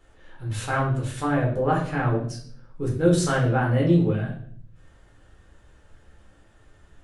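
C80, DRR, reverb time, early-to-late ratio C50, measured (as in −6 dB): 10.0 dB, −4.0 dB, 0.55 s, 6.5 dB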